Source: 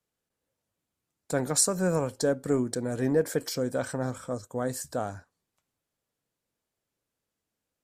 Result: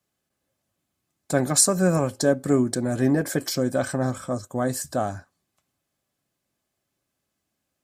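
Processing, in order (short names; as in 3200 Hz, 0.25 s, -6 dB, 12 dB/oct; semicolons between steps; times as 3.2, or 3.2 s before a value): notch comb 470 Hz; gain +7 dB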